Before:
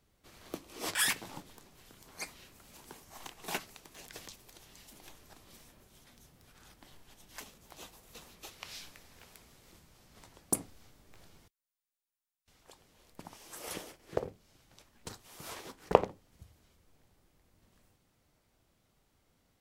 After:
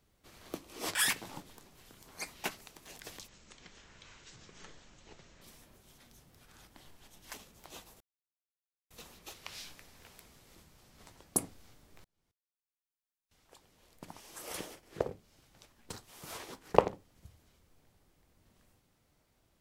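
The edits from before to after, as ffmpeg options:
ffmpeg -i in.wav -filter_complex "[0:a]asplit=6[link_01][link_02][link_03][link_04][link_05][link_06];[link_01]atrim=end=2.442[link_07];[link_02]atrim=start=3.528:end=4.374[link_08];[link_03]atrim=start=4.37:end=5.48,asetpts=PTS-STARTPTS,asetrate=22932,aresample=44100[link_09];[link_04]atrim=start=5.476:end=8.07,asetpts=PTS-STARTPTS,afade=type=out:start_time=2.59:duration=0.004:curve=hsin,apad=pad_dur=0.9[link_10];[link_05]atrim=start=8.07:end=11.21,asetpts=PTS-STARTPTS,afade=type=in:duration=0.004:curve=hsin,afade=type=out:start_time=3.136:duration=0.004:curve=hsin[link_11];[link_06]atrim=start=11.21,asetpts=PTS-STARTPTS,afade=type=in:duration=2.01[link_12];[link_07][link_08]acrossfade=duration=0.004:curve1=hsin:curve2=hsin[link_13];[link_13][link_09]acrossfade=duration=0.004:curve1=hsin:curve2=hsin[link_14];[link_10][link_11][link_12]concat=n=3:v=0:a=1[link_15];[link_14][link_15]acrossfade=duration=0.004:curve1=hsin:curve2=hsin" out.wav

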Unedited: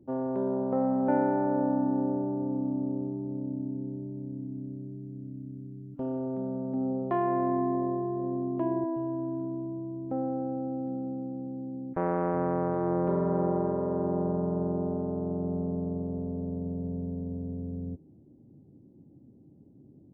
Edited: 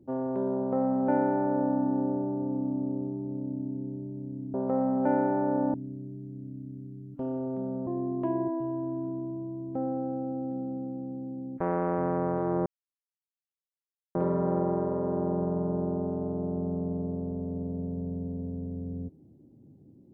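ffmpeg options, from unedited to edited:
ffmpeg -i in.wav -filter_complex "[0:a]asplit=5[link_01][link_02][link_03][link_04][link_05];[link_01]atrim=end=4.542[link_06];[link_02]atrim=start=0.568:end=1.772[link_07];[link_03]atrim=start=4.538:end=6.672[link_08];[link_04]atrim=start=8.228:end=13.02,asetpts=PTS-STARTPTS,afade=type=out:start_time=4.788:duration=0.004:curve=hsin,apad=pad_dur=1.49[link_09];[link_05]atrim=start=13.02,asetpts=PTS-STARTPTS,afade=type=in:duration=0.004:curve=hsin[link_10];[link_06][link_07]acrossfade=duration=0.004:curve1=hsin:curve2=hsin[link_11];[link_11][link_08]acrossfade=duration=0.004:curve1=hsin:curve2=hsin[link_12];[link_09][link_10]concat=n=2:v=0:a=1[link_13];[link_12][link_13]acrossfade=duration=0.004:curve1=hsin:curve2=hsin" out.wav

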